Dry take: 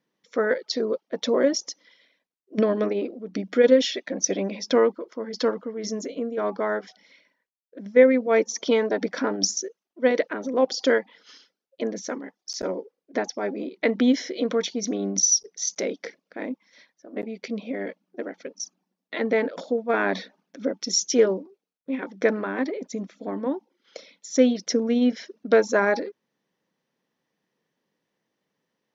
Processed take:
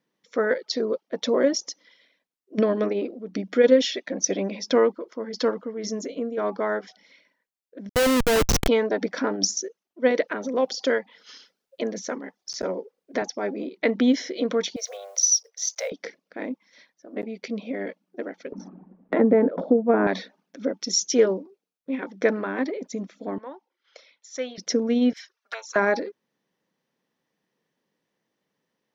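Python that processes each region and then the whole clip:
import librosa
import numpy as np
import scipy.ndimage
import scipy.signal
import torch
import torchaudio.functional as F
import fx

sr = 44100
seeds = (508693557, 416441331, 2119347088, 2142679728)

y = fx.chain(x, sr, fx.high_shelf(hz=2500.0, db=3.5),
    fx.schmitt(flips_db=-24.5), at=(7.89, 8.68))
y = fx.chain(y, sr, fx.peak_eq(hz=310.0, db=-4.5, octaves=0.4),
    fx.band_squash(depth_pct=40), at=(10.28, 13.22))
y = fx.chain(y, sr, fx.block_float(bits=7),
    fx.steep_highpass(hz=480.0, slope=96), at=(14.76, 15.92))
y = fx.chain(y, sr, fx.lowpass(hz=1200.0, slope=12),
    fx.low_shelf(hz=360.0, db=12.0),
    fx.band_squash(depth_pct=70), at=(18.52, 20.07))
y = fx.chain(y, sr, fx.highpass(hz=1100.0, slope=12),
    fx.tilt_eq(slope=-3.0), at=(23.38, 24.58))
y = fx.chain(y, sr, fx.highpass(hz=1000.0, slope=24),
    fx.env_flanger(rest_ms=6.2, full_db=-26.5), at=(25.13, 25.76))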